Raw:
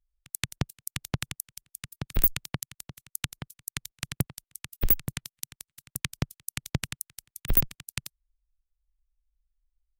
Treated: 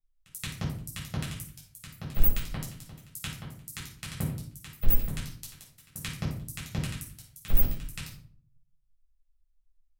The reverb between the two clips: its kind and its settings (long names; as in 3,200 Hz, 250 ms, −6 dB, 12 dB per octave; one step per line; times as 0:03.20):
rectangular room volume 560 cubic metres, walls furnished, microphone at 6.6 metres
level −12 dB